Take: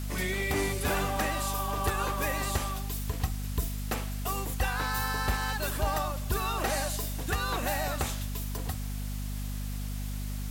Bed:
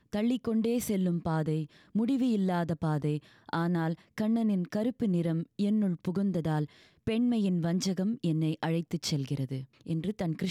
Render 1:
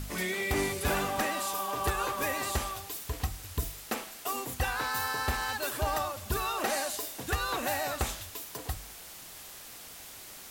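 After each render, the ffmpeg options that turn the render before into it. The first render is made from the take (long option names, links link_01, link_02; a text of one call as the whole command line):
ffmpeg -i in.wav -af "bandreject=frequency=50:width_type=h:width=4,bandreject=frequency=100:width_type=h:width=4,bandreject=frequency=150:width_type=h:width=4,bandreject=frequency=200:width_type=h:width=4,bandreject=frequency=250:width_type=h:width=4" out.wav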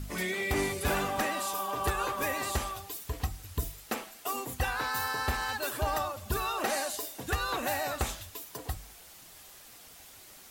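ffmpeg -i in.wav -af "afftdn=noise_reduction=6:noise_floor=-47" out.wav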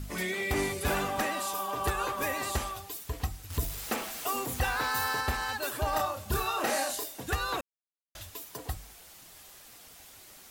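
ffmpeg -i in.wav -filter_complex "[0:a]asettb=1/sr,asplit=3[link_01][link_02][link_03];[link_01]atrim=end=3.504[link_04];[link_02]atrim=start=3.5:end=5.21,asetpts=PTS-STARTPTS,afade=type=in:duration=0.004:curve=qsin,afade=type=out:start_time=1.706:duration=0.004:curve=qsin,aeval=exprs='val(0)+0.5*0.0158*sgn(val(0))':channel_layout=same[link_05];[link_03]atrim=start=5.206[link_06];[link_04][link_05]acrossfade=duration=0.004:curve1=hsin:curve2=qsin[link_07];[link_07][link_06]acrossfade=duration=0.004:curve1=qsin:curve2=hsin,asettb=1/sr,asplit=3[link_08][link_09][link_10];[link_08]atrim=end=5.904[link_11];[link_09]atrim=start=5.9:end=7.04,asetpts=PTS-STARTPTS,afade=type=in:duration=0.004:curve=qsin,afade=type=out:start_time=1.136:duration=0.004:curve=qsin,asplit=2[link_12][link_13];[link_13]adelay=29,volume=-3.5dB[link_14];[link_12][link_14]amix=inputs=2:normalize=0,atrim=end_sample=50274[link_15];[link_10]atrim=start=7.036[link_16];[link_11][link_15]acrossfade=duration=0.004:curve1=hsin:curve2=qsin[link_17];[link_17][link_16]acrossfade=duration=0.004:curve1=qsin:curve2=hsin,asplit=3[link_18][link_19][link_20];[link_18]atrim=end=7.61,asetpts=PTS-STARTPTS,afade=type=out:start_time=7.606:duration=0.004:curve=hsin[link_21];[link_19]atrim=start=7.61:end=8.15,asetpts=PTS-STARTPTS,volume=0[link_22];[link_20]atrim=start=8.15,asetpts=PTS-STARTPTS,afade=type=in:duration=0.004:curve=hsin[link_23];[link_21][link_22][link_23]concat=n=3:v=0:a=1" out.wav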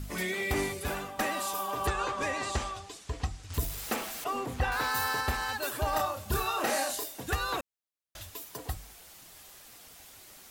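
ffmpeg -i in.wav -filter_complex "[0:a]asettb=1/sr,asplit=3[link_01][link_02][link_03];[link_01]atrim=end=1.874[link_04];[link_02]atrim=start=1.87:end=3.54,asetpts=PTS-STARTPTS,afade=type=in:duration=0.004:curve=qsin,afade=type=out:start_time=1.666:duration=0.004:curve=qsin,lowpass=frequency=8000:width=0.5412,lowpass=frequency=8000:width=1.3066[link_05];[link_03]atrim=start=3.536[link_06];[link_04][link_05]acrossfade=duration=0.004:curve1=hsin:curve2=qsin[link_07];[link_07][link_06]acrossfade=duration=0.004:curve1=qsin:curve2=hsin,asettb=1/sr,asplit=3[link_08][link_09][link_10];[link_08]atrim=end=4.244[link_11];[link_09]atrim=start=4.24:end=4.72,asetpts=PTS-STARTPTS,afade=type=in:duration=0.004:curve=qsin,afade=type=out:start_time=0.476:duration=0.004:curve=qsin,aemphasis=mode=reproduction:type=75fm[link_12];[link_10]atrim=start=4.716[link_13];[link_11][link_12]acrossfade=duration=0.004:curve1=hsin:curve2=qsin[link_14];[link_14][link_13]acrossfade=duration=0.004:curve1=qsin:curve2=hsin,asplit=2[link_15][link_16];[link_15]atrim=end=1.19,asetpts=PTS-STARTPTS,afade=type=out:start_time=0.52:duration=0.67:silence=0.251189[link_17];[link_16]atrim=start=1.19,asetpts=PTS-STARTPTS,afade=type=in:duration=0.004:curve=hsin:silence=0.251189[link_18];[link_17][link_18]concat=n=2:v=0:a=1" out.wav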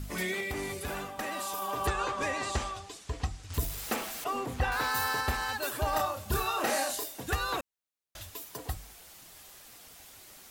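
ffmpeg -i in.wav -filter_complex "[0:a]asettb=1/sr,asplit=3[link_01][link_02][link_03];[link_01]atrim=end=0.404[link_04];[link_02]atrim=start=0.4:end=1.62,asetpts=PTS-STARTPTS,afade=type=in:duration=0.004:curve=qsin,afade=type=out:start_time=1.216:duration=0.004:curve=qsin,acompressor=threshold=-31dB:ratio=6:attack=3.2:release=140:knee=1:detection=peak[link_05];[link_03]atrim=start=1.616[link_06];[link_04][link_05]acrossfade=duration=0.004:curve1=hsin:curve2=qsin[link_07];[link_07][link_06]acrossfade=duration=0.004:curve1=qsin:curve2=hsin" out.wav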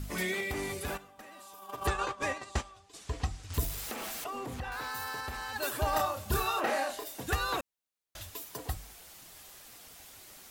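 ffmpeg -i in.wav -filter_complex "[0:a]asplit=3[link_01][link_02][link_03];[link_01]afade=type=out:start_time=0.96:duration=0.02[link_04];[link_02]agate=range=-15dB:threshold=-33dB:ratio=16:release=100:detection=peak,afade=type=in:start_time=0.96:duration=0.02,afade=type=out:start_time=2.93:duration=0.02[link_05];[link_03]afade=type=in:start_time=2.93:duration=0.02[link_06];[link_04][link_05][link_06]amix=inputs=3:normalize=0,asettb=1/sr,asplit=3[link_07][link_08][link_09];[link_07]atrim=end=3.824[link_10];[link_08]atrim=start=3.82:end=5.56,asetpts=PTS-STARTPTS,afade=type=in:duration=0.004:curve=qsin,afade=type=out:start_time=1.736:duration=0.004:curve=qsin,acompressor=threshold=-35dB:ratio=6:attack=3.2:release=140:knee=1:detection=peak[link_11];[link_09]atrim=start=5.556[link_12];[link_10][link_11]acrossfade=duration=0.004:curve1=hsin:curve2=qsin[link_13];[link_13][link_12]acrossfade=duration=0.004:curve1=qsin:curve2=hsin,asplit=3[link_14][link_15][link_16];[link_14]afade=type=out:start_time=6.59:duration=0.02[link_17];[link_15]bass=frequency=250:gain=-5,treble=frequency=4000:gain=-12,afade=type=in:start_time=6.59:duration=0.02,afade=type=out:start_time=7.05:duration=0.02[link_18];[link_16]afade=type=in:start_time=7.05:duration=0.02[link_19];[link_17][link_18][link_19]amix=inputs=3:normalize=0" out.wav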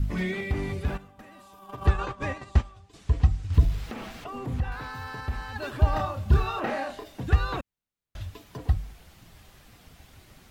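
ffmpeg -i in.wav -filter_complex "[0:a]acrossover=split=5800[link_01][link_02];[link_02]acompressor=threshold=-55dB:ratio=4:attack=1:release=60[link_03];[link_01][link_03]amix=inputs=2:normalize=0,bass=frequency=250:gain=14,treble=frequency=4000:gain=-6" out.wav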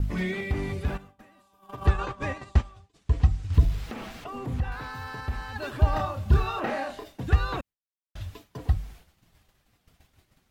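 ffmpeg -i in.wav -af "agate=range=-33dB:threshold=-42dB:ratio=3:detection=peak" out.wav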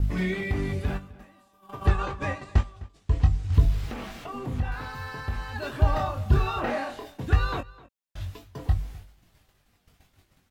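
ffmpeg -i in.wav -filter_complex "[0:a]asplit=2[link_01][link_02];[link_02]adelay=21,volume=-6.5dB[link_03];[link_01][link_03]amix=inputs=2:normalize=0,asplit=2[link_04][link_05];[link_05]adelay=256.6,volume=-20dB,highshelf=frequency=4000:gain=-5.77[link_06];[link_04][link_06]amix=inputs=2:normalize=0" out.wav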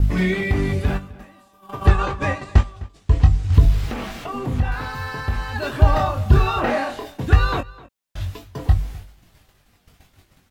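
ffmpeg -i in.wav -af "volume=7.5dB,alimiter=limit=-2dB:level=0:latency=1" out.wav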